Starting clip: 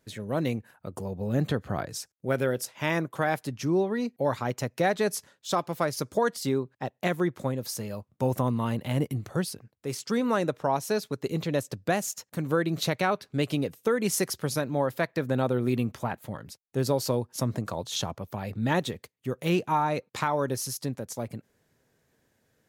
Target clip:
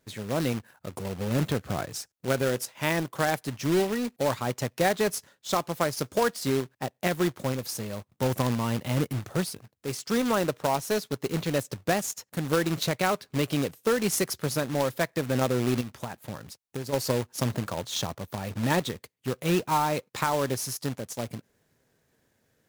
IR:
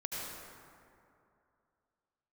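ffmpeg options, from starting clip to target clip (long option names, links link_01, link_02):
-filter_complex "[0:a]asplit=3[link_01][link_02][link_03];[link_01]afade=type=out:start_time=15.8:duration=0.02[link_04];[link_02]acompressor=threshold=-31dB:ratio=12,afade=type=in:start_time=15.8:duration=0.02,afade=type=out:start_time=16.92:duration=0.02[link_05];[link_03]afade=type=in:start_time=16.92:duration=0.02[link_06];[link_04][link_05][link_06]amix=inputs=3:normalize=0,acrusher=bits=2:mode=log:mix=0:aa=0.000001"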